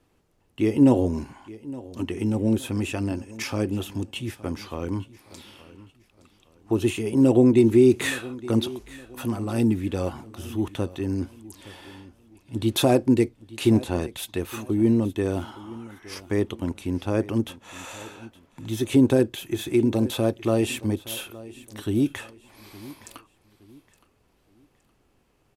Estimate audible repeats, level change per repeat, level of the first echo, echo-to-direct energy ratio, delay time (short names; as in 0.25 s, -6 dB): 2, -9.5 dB, -19.0 dB, -18.5 dB, 0.867 s